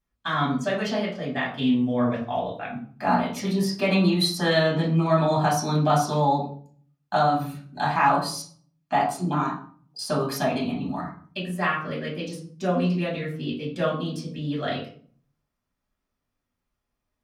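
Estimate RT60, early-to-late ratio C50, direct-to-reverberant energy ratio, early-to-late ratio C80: 0.50 s, 6.0 dB, -6.0 dB, 10.5 dB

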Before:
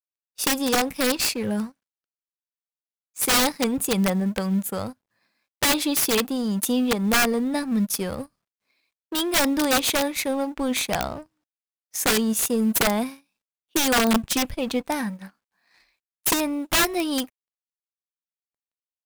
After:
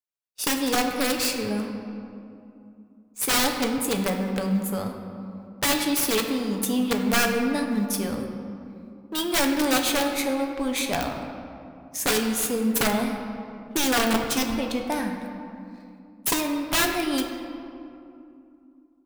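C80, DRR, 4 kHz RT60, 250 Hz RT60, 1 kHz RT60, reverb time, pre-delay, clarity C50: 6.0 dB, 2.5 dB, 1.4 s, 3.6 s, 2.6 s, 2.6 s, 7 ms, 5.0 dB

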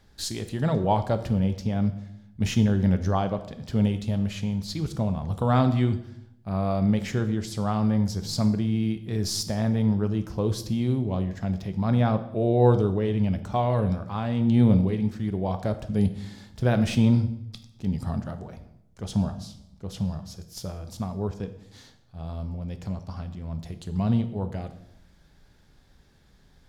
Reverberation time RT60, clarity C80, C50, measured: 0.75 s, 15.0 dB, 12.0 dB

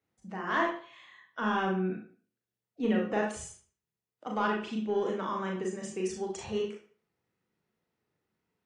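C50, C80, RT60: 5.0 dB, 11.0 dB, 0.45 s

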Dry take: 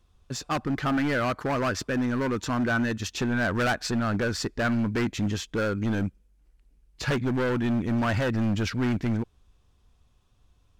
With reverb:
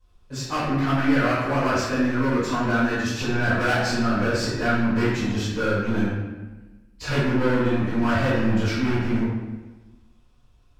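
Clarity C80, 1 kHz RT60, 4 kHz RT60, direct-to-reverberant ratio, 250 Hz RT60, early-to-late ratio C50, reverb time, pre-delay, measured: 1.5 dB, 1.2 s, 0.85 s, -14.5 dB, 1.4 s, -1.5 dB, 1.2 s, 3 ms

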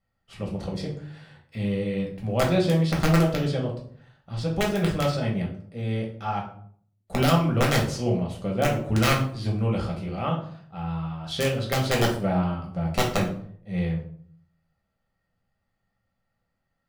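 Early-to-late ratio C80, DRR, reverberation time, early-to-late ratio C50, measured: 12.0 dB, -2.0 dB, 0.60 s, 7.0 dB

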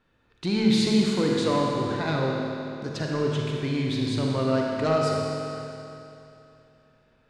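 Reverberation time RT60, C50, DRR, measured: 2.9 s, -1.0 dB, -2.0 dB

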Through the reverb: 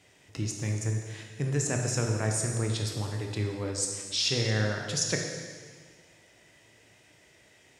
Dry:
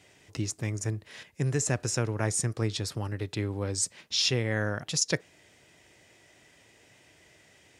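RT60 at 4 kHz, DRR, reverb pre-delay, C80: 1.7 s, 1.5 dB, 17 ms, 5.0 dB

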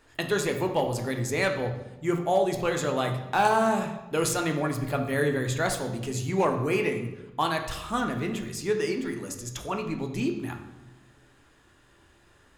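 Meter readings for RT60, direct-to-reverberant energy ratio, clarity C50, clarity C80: 1.1 s, 3.5 dB, 7.5 dB, 10.5 dB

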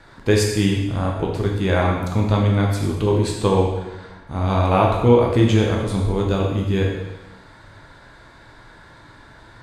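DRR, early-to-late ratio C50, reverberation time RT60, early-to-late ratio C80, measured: -1.5 dB, 2.5 dB, 1.1 s, 5.0 dB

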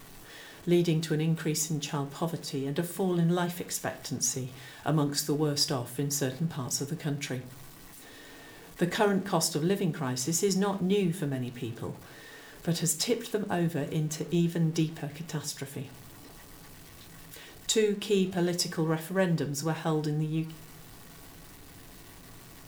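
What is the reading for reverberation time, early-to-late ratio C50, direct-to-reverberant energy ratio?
0.45 s, 15.5 dB, 5.0 dB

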